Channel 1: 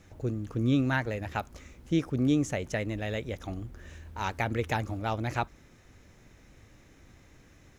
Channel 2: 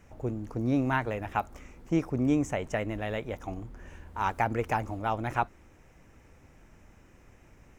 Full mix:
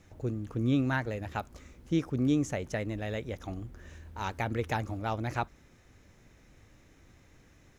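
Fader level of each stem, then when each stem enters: -3.0 dB, -16.5 dB; 0.00 s, 0.00 s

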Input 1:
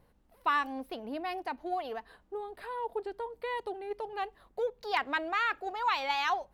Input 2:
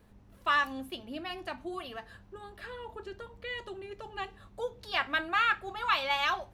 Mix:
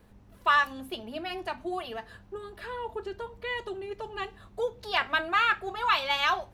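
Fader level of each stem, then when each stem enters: -4.5 dB, +2.5 dB; 0.00 s, 0.00 s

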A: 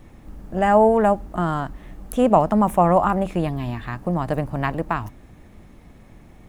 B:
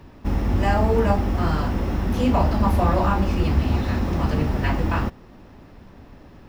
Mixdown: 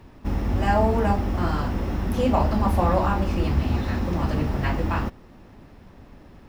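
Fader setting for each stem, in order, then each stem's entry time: -10.5 dB, -2.5 dB; 0.00 s, 0.00 s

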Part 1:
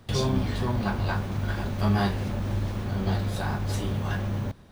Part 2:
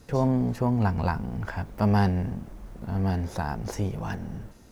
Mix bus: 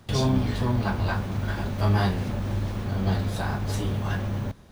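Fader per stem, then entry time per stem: +0.5 dB, -8.0 dB; 0.00 s, 0.00 s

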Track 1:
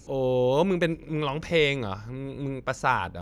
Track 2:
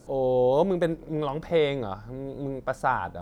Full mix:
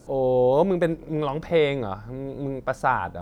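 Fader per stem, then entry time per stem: -14.5 dB, +1.5 dB; 0.00 s, 0.00 s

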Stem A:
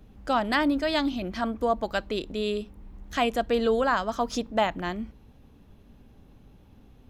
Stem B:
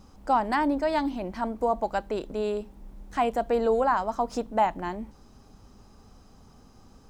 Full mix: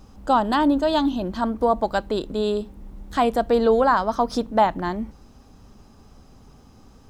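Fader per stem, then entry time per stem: -0.5 dB, +2.0 dB; 0.00 s, 0.00 s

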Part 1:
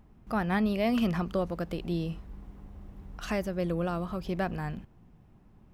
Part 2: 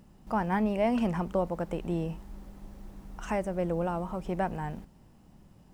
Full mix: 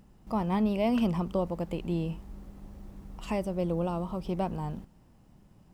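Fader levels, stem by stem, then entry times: -6.5 dB, -3.0 dB; 0.00 s, 0.00 s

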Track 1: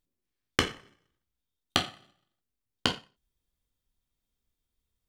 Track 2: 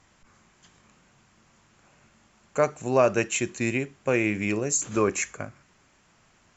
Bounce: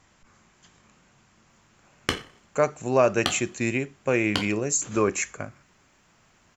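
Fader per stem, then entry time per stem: -0.5 dB, +0.5 dB; 1.50 s, 0.00 s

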